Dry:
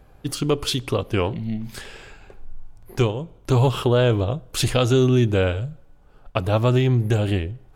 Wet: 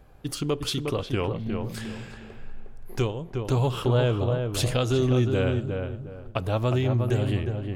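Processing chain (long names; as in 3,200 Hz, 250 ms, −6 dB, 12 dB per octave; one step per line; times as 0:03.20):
in parallel at −2 dB: downward compressor, threshold −29 dBFS, peak gain reduction 14.5 dB
on the sum: feedback echo with a low-pass in the loop 359 ms, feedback 30%, low-pass 1,600 Hz, level −4.5 dB
level −7.5 dB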